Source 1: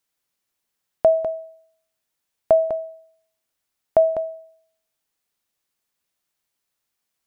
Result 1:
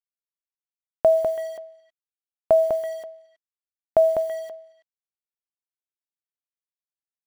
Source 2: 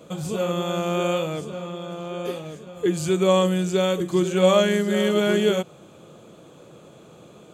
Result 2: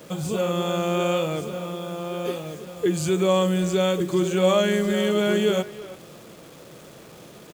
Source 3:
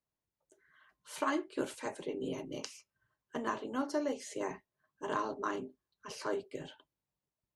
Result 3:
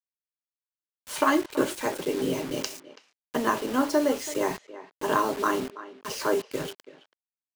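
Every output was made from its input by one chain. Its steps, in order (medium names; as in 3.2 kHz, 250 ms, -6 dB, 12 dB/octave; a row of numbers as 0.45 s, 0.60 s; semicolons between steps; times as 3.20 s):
in parallel at +1.5 dB: peak limiter -16.5 dBFS; on the sum: bit crusher 7-bit; speakerphone echo 330 ms, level -15 dB; peak normalisation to -9 dBFS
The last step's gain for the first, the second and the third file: -5.0 dB, -5.5 dB, +4.0 dB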